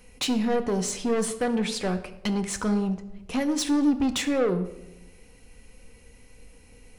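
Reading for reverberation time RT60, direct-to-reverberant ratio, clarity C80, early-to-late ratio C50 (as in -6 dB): 0.95 s, 7.5 dB, 14.5 dB, 12.0 dB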